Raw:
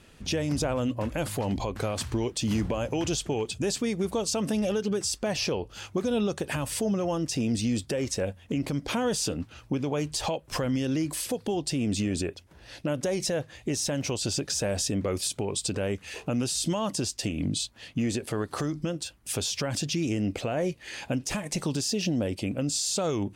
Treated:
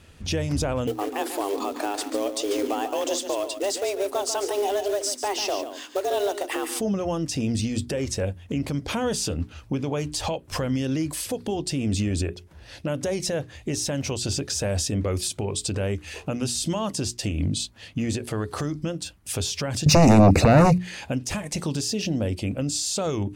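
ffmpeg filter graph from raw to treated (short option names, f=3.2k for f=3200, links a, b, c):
-filter_complex "[0:a]asettb=1/sr,asplit=3[a][b][c];[a]atrim=end=0.874[d];[b]atrim=start=0.87:end=6.8,asetpts=PTS-STARTPTS,afade=t=in:d=0.004:c=qsin,afade=t=out:st=5.926:d=0.004:c=qsin,afreqshift=200,acrusher=bits=4:mode=log:mix=0:aa=0.000001,aecho=1:1:143:0.316,atrim=end_sample=261513[e];[c]atrim=start=6.796[f];[d][e]acrossfade=d=0.004:c1=hsin:c2=qsin[g];[g][f]acrossfade=d=0.004:c1=qsin:c2=hsin,asettb=1/sr,asplit=3[h][i][j];[h]atrim=end=19.864[k];[i]atrim=start=19.86:end=20.78,asetpts=PTS-STARTPTS,afade=t=in:d=0.004:c=qsin,afade=t=out:st=0.916:d=0.004:c=qsin,equalizer=f=180:t=o:w=0.99:g=11.5,aeval=exprs='0.251*sin(PI/2*2.82*val(0)/0.251)':c=same,asuperstop=centerf=3200:order=4:qfactor=3.6[l];[j]atrim=start=20.776[m];[k][l]acrossfade=d=0.004:c1=hsin:c2=qsin[n];[n][m]acrossfade=d=0.004:c1=qsin:c2=hsin,equalizer=f=79:w=1.9:g=10.5,bandreject=f=60:t=h:w=6,bandreject=f=120:t=h:w=6,bandreject=f=180:t=h:w=6,bandreject=f=240:t=h:w=6,bandreject=f=300:t=h:w=6,bandreject=f=360:t=h:w=6,bandreject=f=420:t=h:w=6,volume=1.5dB"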